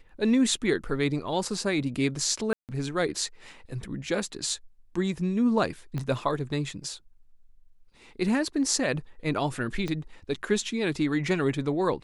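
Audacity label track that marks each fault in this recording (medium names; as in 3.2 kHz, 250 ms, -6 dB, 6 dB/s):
2.530000	2.690000	dropout 158 ms
5.980000	5.980000	pop -20 dBFS
9.880000	9.880000	pop -19 dBFS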